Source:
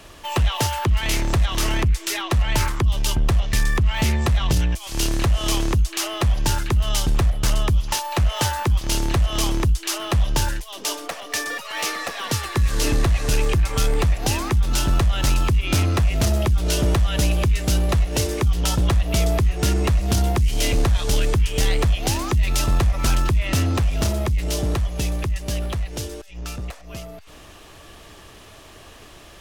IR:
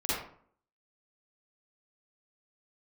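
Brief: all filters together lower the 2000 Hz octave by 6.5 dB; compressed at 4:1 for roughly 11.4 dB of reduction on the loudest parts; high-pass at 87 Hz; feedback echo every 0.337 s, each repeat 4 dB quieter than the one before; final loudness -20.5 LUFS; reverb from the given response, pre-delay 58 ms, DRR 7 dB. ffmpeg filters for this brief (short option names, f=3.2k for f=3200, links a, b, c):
-filter_complex "[0:a]highpass=87,equalizer=f=2k:t=o:g=-8.5,acompressor=threshold=-32dB:ratio=4,aecho=1:1:337|674|1011|1348|1685|2022|2359|2696|3033:0.631|0.398|0.25|0.158|0.0994|0.0626|0.0394|0.0249|0.0157,asplit=2[a][b];[1:a]atrim=start_sample=2205,adelay=58[c];[b][c]afir=irnorm=-1:irlink=0,volume=-15dB[d];[a][d]amix=inputs=2:normalize=0,volume=11dB"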